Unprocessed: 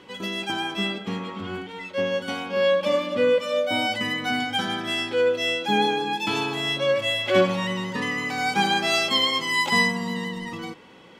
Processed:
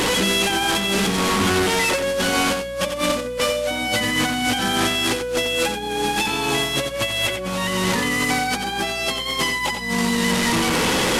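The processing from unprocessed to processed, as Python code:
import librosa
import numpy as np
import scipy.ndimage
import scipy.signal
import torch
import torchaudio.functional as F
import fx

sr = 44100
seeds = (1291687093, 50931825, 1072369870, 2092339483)

y = fx.delta_mod(x, sr, bps=64000, step_db=-25.5)
y = fx.over_compress(y, sr, threshold_db=-30.0, ratio=-1.0)
y = fx.add_hum(y, sr, base_hz=60, snr_db=18)
y = y + 10.0 ** (-8.0 / 20.0) * np.pad(y, (int(89 * sr / 1000.0), 0))[:len(y)]
y = y * librosa.db_to_amplitude(7.0)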